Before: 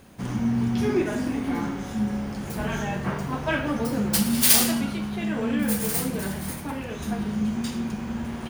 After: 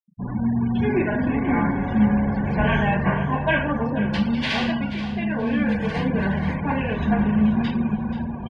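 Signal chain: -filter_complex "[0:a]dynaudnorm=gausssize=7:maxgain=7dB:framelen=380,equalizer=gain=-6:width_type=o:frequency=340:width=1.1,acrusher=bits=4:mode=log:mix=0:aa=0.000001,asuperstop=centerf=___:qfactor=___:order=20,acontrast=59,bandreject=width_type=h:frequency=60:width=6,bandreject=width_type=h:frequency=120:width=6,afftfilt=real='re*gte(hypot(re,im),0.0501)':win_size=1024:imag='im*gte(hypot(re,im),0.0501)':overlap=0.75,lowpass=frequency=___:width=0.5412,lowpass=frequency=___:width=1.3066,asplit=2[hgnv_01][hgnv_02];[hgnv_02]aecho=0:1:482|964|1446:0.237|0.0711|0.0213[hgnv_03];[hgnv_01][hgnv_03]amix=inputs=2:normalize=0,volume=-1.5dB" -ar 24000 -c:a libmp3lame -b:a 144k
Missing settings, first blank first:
1300, 6.6, 3100, 3100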